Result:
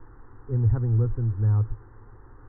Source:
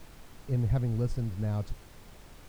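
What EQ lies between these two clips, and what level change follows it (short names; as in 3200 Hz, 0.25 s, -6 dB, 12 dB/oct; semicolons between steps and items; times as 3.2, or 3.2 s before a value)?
steep low-pass 2000 Hz 96 dB/oct; bell 110 Hz +13.5 dB 0.41 oct; fixed phaser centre 630 Hz, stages 6; +4.0 dB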